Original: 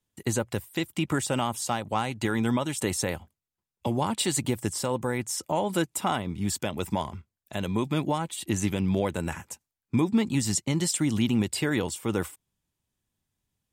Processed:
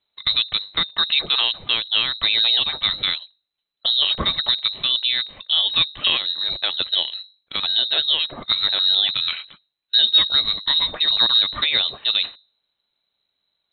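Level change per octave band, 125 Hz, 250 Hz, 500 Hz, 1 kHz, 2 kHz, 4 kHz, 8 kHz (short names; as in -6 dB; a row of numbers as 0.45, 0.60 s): -13.5 dB, -16.0 dB, -8.5 dB, -2.0 dB, +8.0 dB, +22.5 dB, under -40 dB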